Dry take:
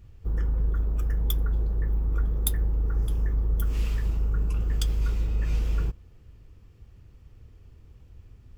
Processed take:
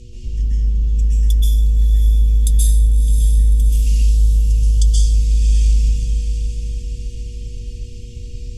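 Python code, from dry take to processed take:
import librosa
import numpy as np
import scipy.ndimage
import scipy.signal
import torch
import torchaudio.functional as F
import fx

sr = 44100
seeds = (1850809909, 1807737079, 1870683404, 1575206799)

p1 = scipy.signal.sosfilt(scipy.signal.butter(4, 9900.0, 'lowpass', fs=sr, output='sos'), x)
p2 = fx.spec_erase(p1, sr, start_s=3.89, length_s=1.07, low_hz=200.0, high_hz=2900.0)
p3 = scipy.signal.sosfilt(scipy.signal.ellip(3, 1.0, 50, [210.0, 2700.0], 'bandstop', fs=sr, output='sos'), p2)
p4 = fx.peak_eq(p3, sr, hz=6500.0, db=12.5, octaves=1.8)
p5 = p4 + 0.42 * np.pad(p4, (int(3.2 * sr / 1000.0), 0))[:len(p4)]
p6 = fx.dynamic_eq(p5, sr, hz=3200.0, q=0.83, threshold_db=-52.0, ratio=4.0, max_db=-8)
p7 = fx.over_compress(p6, sr, threshold_db=-29.0, ratio=-0.5)
p8 = p6 + (p7 * 10.0 ** (0.0 / 20.0))
p9 = fx.quant_float(p8, sr, bits=8)
p10 = fx.dmg_buzz(p9, sr, base_hz=120.0, harmonics=4, level_db=-47.0, tilt_db=-3, odd_only=False)
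p11 = fx.echo_diffused(p10, sr, ms=605, feedback_pct=53, wet_db=-7.5)
p12 = fx.rev_plate(p11, sr, seeds[0], rt60_s=0.76, hf_ratio=0.85, predelay_ms=115, drr_db=-6.0)
y = p12 * 10.0 ** (-1.5 / 20.0)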